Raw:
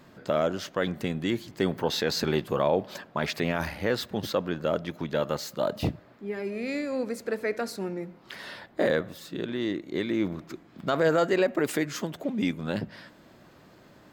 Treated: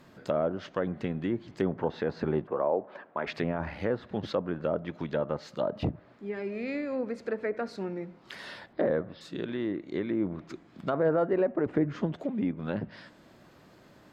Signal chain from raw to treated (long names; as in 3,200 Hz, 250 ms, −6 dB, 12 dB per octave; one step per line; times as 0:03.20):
0:02.47–0:03.27: three-way crossover with the lows and the highs turned down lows −15 dB, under 280 Hz, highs −22 dB, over 2,200 Hz
0:08.73–0:09.21: Butterworth low-pass 5,400 Hz 96 dB per octave
treble cut that deepens with the level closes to 1,100 Hz, closed at −23.5 dBFS
0:11.66–0:12.15: spectral tilt −2.5 dB per octave
level −2 dB